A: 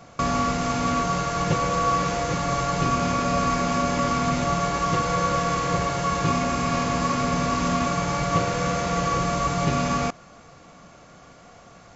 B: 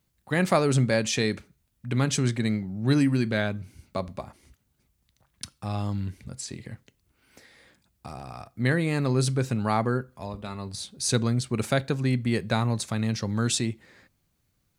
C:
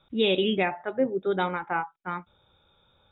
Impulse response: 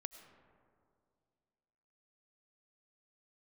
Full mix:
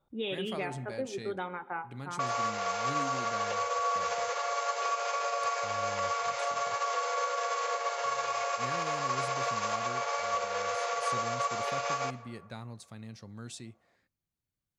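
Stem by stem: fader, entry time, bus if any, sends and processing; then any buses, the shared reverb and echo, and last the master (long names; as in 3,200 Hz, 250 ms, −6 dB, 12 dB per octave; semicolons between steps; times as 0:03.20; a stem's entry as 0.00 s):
+2.5 dB, 2.00 s, bus A, send −6.5 dB, Butterworth high-pass 440 Hz 72 dB per octave; brickwall limiter −19 dBFS, peak gain reduction 6.5 dB; expander for the loud parts 2.5 to 1, over −42 dBFS
−18.5 dB, 0.00 s, no bus, no send, no processing
−7.5 dB, 0.00 s, bus A, send −8 dB, low-shelf EQ 350 Hz −5.5 dB
bus A: 0.0 dB, low-pass that shuts in the quiet parts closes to 1,100 Hz, open at −24 dBFS; downward compressor, threshold −34 dBFS, peak gain reduction 11.5 dB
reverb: on, RT60 2.3 s, pre-delay 60 ms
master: no processing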